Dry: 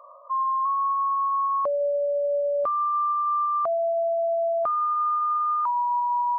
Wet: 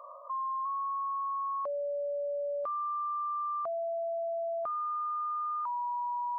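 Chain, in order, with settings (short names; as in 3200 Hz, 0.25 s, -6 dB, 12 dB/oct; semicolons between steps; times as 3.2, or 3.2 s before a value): 1.21–3.36 low shelf 370 Hz -7.5 dB; limiter -30.5 dBFS, peak gain reduction 10.5 dB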